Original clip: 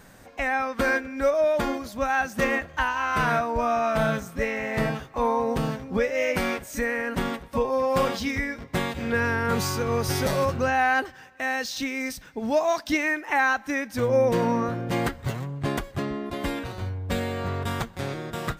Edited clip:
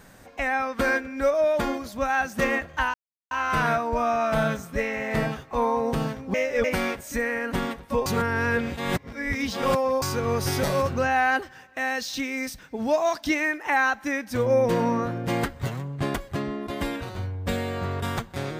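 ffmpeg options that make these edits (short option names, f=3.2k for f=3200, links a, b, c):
-filter_complex "[0:a]asplit=6[a][b][c][d][e][f];[a]atrim=end=2.94,asetpts=PTS-STARTPTS,afade=t=out:st=2.936:d=0.004:c=hsin,apad=pad_dur=0.37[g];[b]atrim=start=2.94:end=5.972,asetpts=PTS-STARTPTS,afade=t=in:d=0.004:c=hsin[h];[c]atrim=start=5.968:end=6.272,asetpts=PTS-STARTPTS,areverse[i];[d]atrim=start=6.268:end=7.692[j];[e]atrim=start=7.688:end=9.652,asetpts=PTS-STARTPTS,areverse[k];[f]atrim=start=9.648[l];[g][h]concat=n=2:v=0:a=1[m];[m][i]acrossfade=d=0.004:c1=hsin:c2=hsin[n];[n][j]acrossfade=d=0.004:c1=hsin:c2=hsin[o];[o][k]acrossfade=d=0.004:c1=hsin:c2=hsin[p];[p][l]acrossfade=d=0.004:c1=hsin:c2=hsin"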